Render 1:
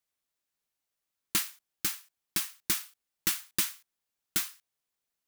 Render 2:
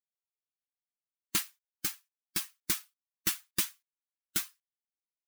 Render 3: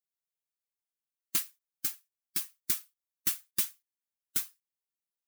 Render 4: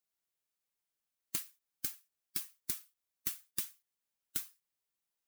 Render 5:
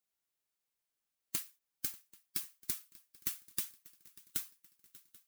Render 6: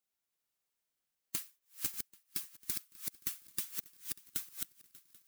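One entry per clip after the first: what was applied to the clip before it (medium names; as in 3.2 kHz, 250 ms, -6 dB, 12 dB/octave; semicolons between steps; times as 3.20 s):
expander on every frequency bin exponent 1.5
treble shelf 6.7 kHz +9 dB; trim -6 dB
compression, threshold -38 dBFS, peak gain reduction 13.5 dB; trim +3.5 dB
shuffle delay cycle 786 ms, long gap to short 3:1, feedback 50%, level -21.5 dB
chunks repeated in reverse 321 ms, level -2.5 dB; trim -1 dB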